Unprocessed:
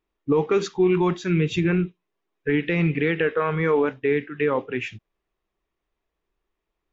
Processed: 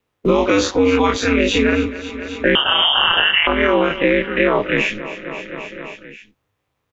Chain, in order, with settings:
every bin's largest magnitude spread in time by 60 ms
0:02.55–0:03.47: voice inversion scrambler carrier 3,300 Hz
noise gate with hold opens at −32 dBFS
ring modulation 100 Hz
low-shelf EQ 240 Hz −8 dB
on a send: repeating echo 265 ms, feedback 56%, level −19 dB
on the sum: boost into a limiter +11 dB
multiband upward and downward compressor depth 70%
level −2 dB

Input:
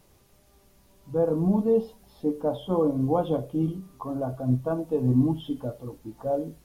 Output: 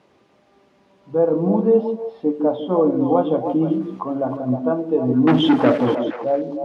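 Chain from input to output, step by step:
0:03.41–0:04.37: transient designer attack +3 dB, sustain +7 dB
0:05.27–0:05.95: leveller curve on the samples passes 5
band-pass filter 220–2,900 Hz
echo through a band-pass that steps 155 ms, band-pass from 280 Hz, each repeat 1.4 octaves, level −3 dB
level +7 dB

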